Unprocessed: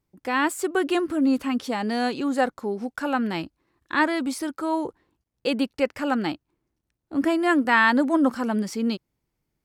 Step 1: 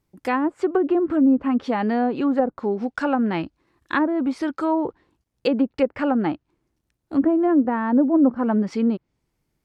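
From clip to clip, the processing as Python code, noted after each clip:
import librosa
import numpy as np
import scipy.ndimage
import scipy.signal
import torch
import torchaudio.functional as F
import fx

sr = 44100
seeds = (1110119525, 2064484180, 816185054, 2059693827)

y = fx.env_lowpass_down(x, sr, base_hz=560.0, full_db=-18.5)
y = F.gain(torch.from_numpy(y), 4.5).numpy()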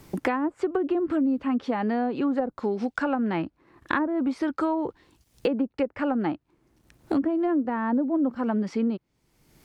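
y = fx.band_squash(x, sr, depth_pct=100)
y = F.gain(torch.from_numpy(y), -5.5).numpy()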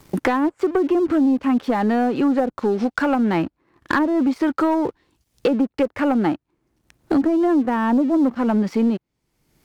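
y = fx.leveller(x, sr, passes=2)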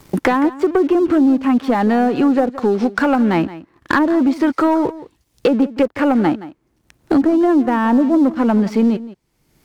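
y = x + 10.0 ** (-16.5 / 20.0) * np.pad(x, (int(171 * sr / 1000.0), 0))[:len(x)]
y = F.gain(torch.from_numpy(y), 4.0).numpy()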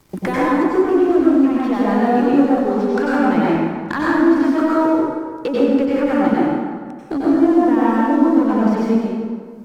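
y = fx.rev_plate(x, sr, seeds[0], rt60_s=1.8, hf_ratio=0.6, predelay_ms=80, drr_db=-7.0)
y = F.gain(torch.from_numpy(y), -8.5).numpy()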